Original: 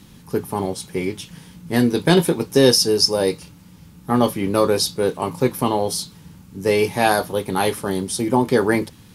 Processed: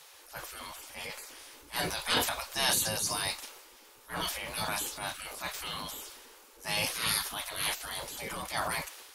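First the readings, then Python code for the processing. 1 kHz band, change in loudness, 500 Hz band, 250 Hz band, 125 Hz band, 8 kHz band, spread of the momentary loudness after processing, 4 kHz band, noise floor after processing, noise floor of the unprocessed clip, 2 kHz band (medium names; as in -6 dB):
-13.0 dB, -13.0 dB, -23.0 dB, -25.5 dB, -20.5 dB, -6.0 dB, 15 LU, -8.5 dB, -56 dBFS, -46 dBFS, -7.5 dB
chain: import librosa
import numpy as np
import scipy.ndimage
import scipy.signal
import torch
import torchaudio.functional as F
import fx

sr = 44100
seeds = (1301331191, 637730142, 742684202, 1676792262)

y = fx.spec_gate(x, sr, threshold_db=-20, keep='weak')
y = fx.transient(y, sr, attack_db=-7, sustain_db=6)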